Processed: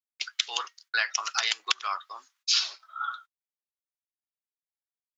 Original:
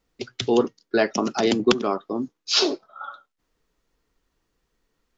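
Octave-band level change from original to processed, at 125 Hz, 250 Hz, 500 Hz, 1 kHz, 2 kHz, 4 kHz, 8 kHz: under -40 dB, under -40 dB, -28.0 dB, -4.0 dB, +1.5 dB, -1.0 dB, n/a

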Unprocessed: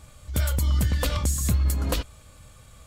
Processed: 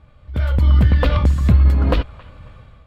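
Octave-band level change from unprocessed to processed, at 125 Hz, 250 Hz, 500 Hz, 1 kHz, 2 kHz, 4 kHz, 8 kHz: +9.5 dB, +9.5 dB, +9.0 dB, +8.0 dB, +6.0 dB, +0.5 dB, under -15 dB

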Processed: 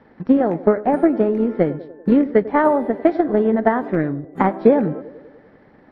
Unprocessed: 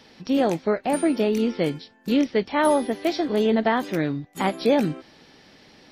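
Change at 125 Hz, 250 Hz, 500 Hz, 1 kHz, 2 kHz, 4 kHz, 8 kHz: +5.0 dB, +5.5 dB, +5.5 dB, +4.5 dB, +1.0 dB, under -15 dB, under -25 dB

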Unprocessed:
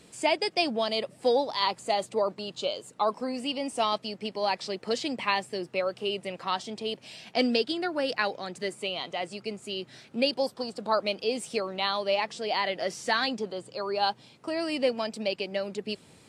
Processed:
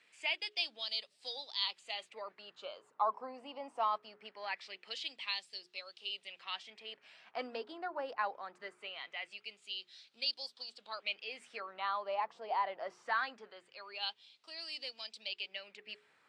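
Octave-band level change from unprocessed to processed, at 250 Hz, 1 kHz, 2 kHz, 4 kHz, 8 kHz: -24.5, -8.5, -8.0, -7.5, -19.5 dB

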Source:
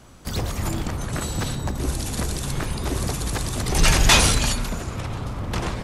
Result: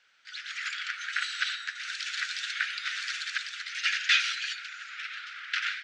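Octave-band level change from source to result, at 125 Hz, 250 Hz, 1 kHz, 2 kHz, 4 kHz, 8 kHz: under -40 dB, under -40 dB, -12.0 dB, -0.5 dB, -5.0 dB, -16.5 dB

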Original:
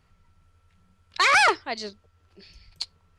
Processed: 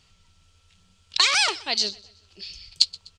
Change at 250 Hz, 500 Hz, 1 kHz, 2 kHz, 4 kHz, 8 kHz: -3.5, -6.0, -8.0, -4.5, +8.5, +6.5 dB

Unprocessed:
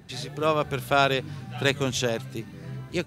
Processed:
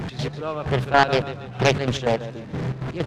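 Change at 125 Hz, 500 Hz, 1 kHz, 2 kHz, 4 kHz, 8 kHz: +6.0, +3.5, +4.5, +3.5, +0.5, -3.0 dB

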